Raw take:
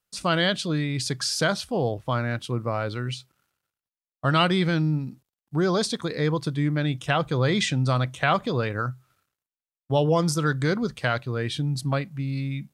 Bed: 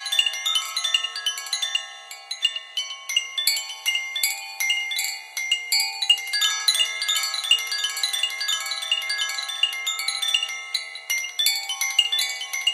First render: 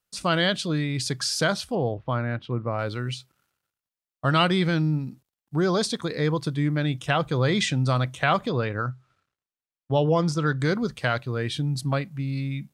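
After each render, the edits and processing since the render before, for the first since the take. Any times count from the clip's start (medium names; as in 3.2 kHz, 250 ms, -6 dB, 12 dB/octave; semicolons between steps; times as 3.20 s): 1.75–2.79 s: distance through air 300 m; 8.49–10.60 s: distance through air 87 m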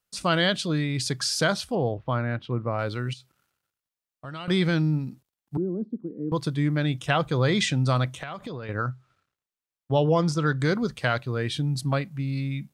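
3.13–4.48 s: compression 2:1, threshold -48 dBFS; 5.57–6.32 s: Butterworth band-pass 260 Hz, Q 1.7; 8.12–8.69 s: compression 12:1, threshold -31 dBFS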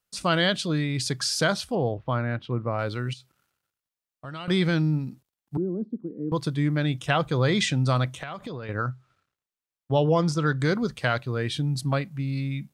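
no audible change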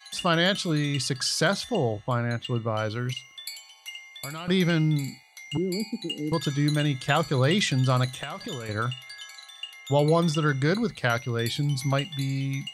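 add bed -16.5 dB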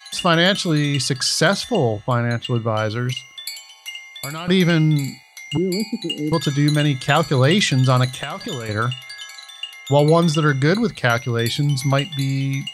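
trim +7 dB; peak limiter -2 dBFS, peak gain reduction 1 dB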